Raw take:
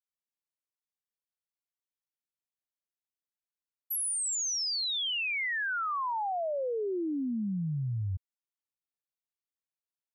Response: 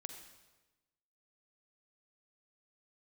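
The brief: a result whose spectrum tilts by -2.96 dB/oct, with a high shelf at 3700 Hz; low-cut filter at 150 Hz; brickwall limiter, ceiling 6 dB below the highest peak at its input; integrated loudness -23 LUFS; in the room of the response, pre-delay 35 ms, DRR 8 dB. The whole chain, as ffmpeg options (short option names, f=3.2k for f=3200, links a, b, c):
-filter_complex "[0:a]highpass=150,highshelf=f=3.7k:g=-9,alimiter=level_in=11dB:limit=-24dB:level=0:latency=1,volume=-11dB,asplit=2[a][b];[1:a]atrim=start_sample=2205,adelay=35[c];[b][c]afir=irnorm=-1:irlink=0,volume=-4dB[d];[a][d]amix=inputs=2:normalize=0,volume=13.5dB"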